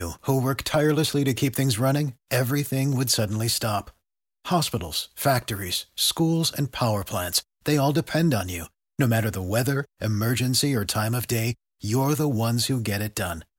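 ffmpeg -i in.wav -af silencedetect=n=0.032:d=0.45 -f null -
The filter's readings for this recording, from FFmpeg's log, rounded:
silence_start: 3.81
silence_end: 4.46 | silence_duration: 0.66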